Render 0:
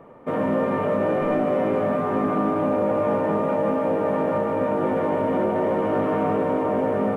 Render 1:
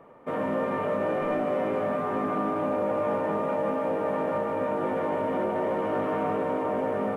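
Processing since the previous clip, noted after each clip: bass shelf 450 Hz -6 dB; trim -2.5 dB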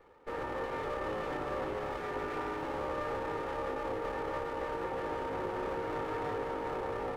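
comb filter that takes the minimum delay 2.3 ms; trim -7 dB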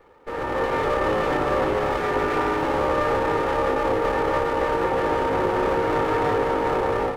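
level rider gain up to 7.5 dB; trim +6.5 dB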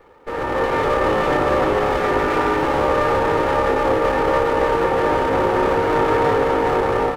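delay 422 ms -10.5 dB; trim +4 dB

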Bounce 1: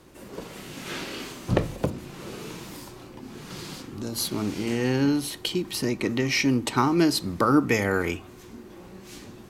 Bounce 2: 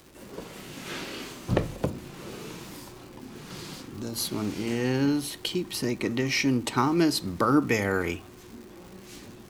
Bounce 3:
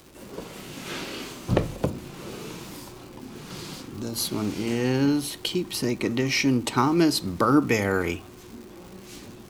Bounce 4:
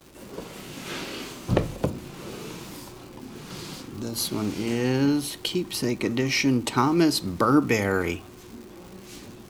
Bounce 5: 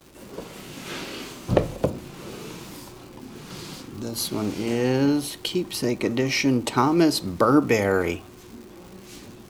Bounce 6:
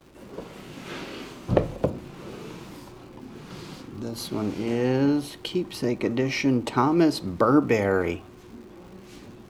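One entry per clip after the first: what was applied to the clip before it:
crackle 320 per s -39 dBFS; trim -2 dB
peaking EQ 1.8 kHz -2.5 dB 0.39 oct; trim +2.5 dB
gate with hold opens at -37 dBFS
dynamic bell 580 Hz, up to +6 dB, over -37 dBFS, Q 1.4
treble shelf 4.2 kHz -10.5 dB; trim -1 dB

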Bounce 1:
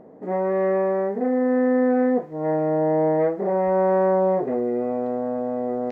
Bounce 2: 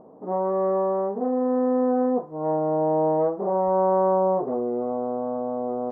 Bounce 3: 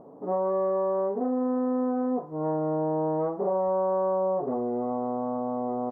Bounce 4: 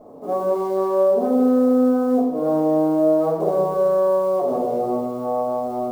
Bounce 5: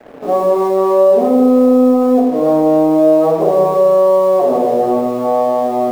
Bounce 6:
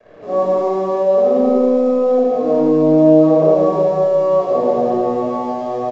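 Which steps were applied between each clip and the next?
resonant high shelf 1.5 kHz -11 dB, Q 3; trim -3.5 dB
comb 7.1 ms, depth 38%; compression, threshold -23 dBFS, peak gain reduction 7 dB
short-mantissa float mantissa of 4-bit; reverberation RT60 1.2 s, pre-delay 3 ms, DRR -8 dB; trim -4 dB
in parallel at -1 dB: peak limiter -18 dBFS, peak gain reduction 9.5 dB; on the sum: comb of notches 1.5 kHz; crossover distortion -42 dBFS; trim +5 dB
on a send: loudspeakers at several distances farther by 33 m -9 dB, 57 m -11 dB; on the sum: simulated room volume 2700 m³, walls mixed, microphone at 5.6 m; resampled via 16 kHz; trim -12.5 dB

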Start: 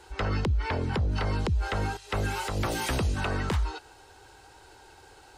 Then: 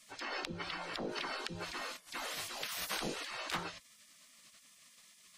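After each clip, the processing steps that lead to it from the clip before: de-hum 171.7 Hz, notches 3; spectral gate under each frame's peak -20 dB weak; dynamic bell 7.9 kHz, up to -5 dB, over -56 dBFS, Q 0.85; trim +2.5 dB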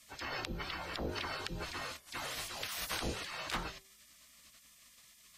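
octave divider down 2 oct, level +2 dB; de-hum 193.1 Hz, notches 4; whistle 13 kHz -69 dBFS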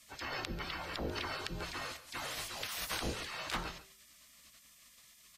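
delay 140 ms -15 dB

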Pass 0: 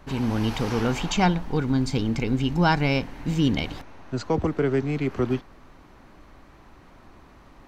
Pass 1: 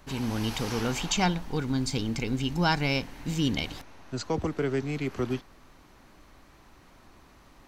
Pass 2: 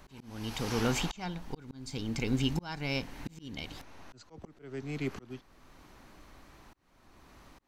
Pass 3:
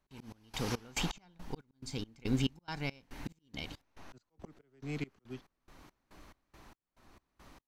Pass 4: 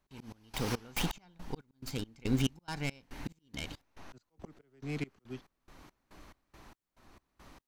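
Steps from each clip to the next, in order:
treble shelf 3.4 kHz +11 dB; trim -5.5 dB
slow attack 648 ms
trance gate ".xx..xx." 140 bpm -24 dB; trim -1 dB
tracing distortion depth 0.16 ms; trim +1.5 dB

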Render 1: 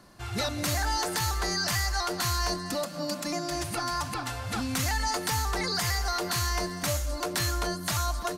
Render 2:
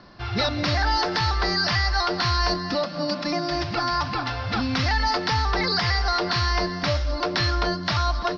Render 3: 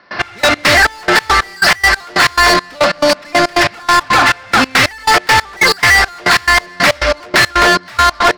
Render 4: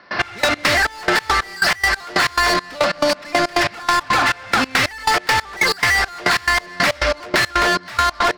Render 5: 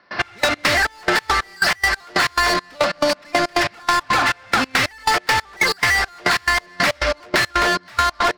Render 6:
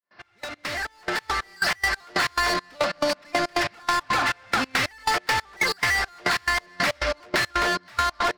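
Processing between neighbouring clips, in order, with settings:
Chebyshev low-pass 5.4 kHz, order 6; trim +7 dB
graphic EQ 500/2000/4000 Hz +3/+9/-3 dB; overdrive pedal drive 27 dB, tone 5.8 kHz, clips at -7.5 dBFS; trance gate ".x..x.xx..x.x..x" 139 bpm -24 dB; trim +5.5 dB
compression, threshold -15 dBFS, peak gain reduction 8.5 dB
upward expansion 1.5:1, over -30 dBFS
fade-in on the opening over 1.73 s; trim -5.5 dB

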